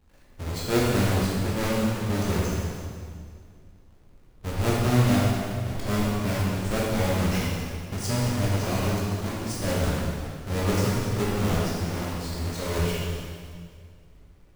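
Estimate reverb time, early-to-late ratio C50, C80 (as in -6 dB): 2.1 s, -2.5 dB, -0.5 dB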